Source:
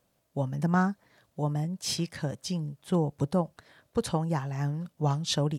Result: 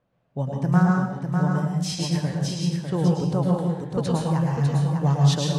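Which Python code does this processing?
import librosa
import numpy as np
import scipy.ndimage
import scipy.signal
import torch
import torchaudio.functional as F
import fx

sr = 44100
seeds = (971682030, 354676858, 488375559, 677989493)

y = fx.peak_eq(x, sr, hz=140.0, db=4.5, octaves=0.31)
y = fx.rev_plate(y, sr, seeds[0], rt60_s=0.77, hf_ratio=0.8, predelay_ms=95, drr_db=-1.0)
y = fx.env_lowpass(y, sr, base_hz=2300.0, full_db=-19.5)
y = y + 10.0 ** (-5.5 / 20.0) * np.pad(y, (int(600 * sr / 1000.0), 0))[:len(y)]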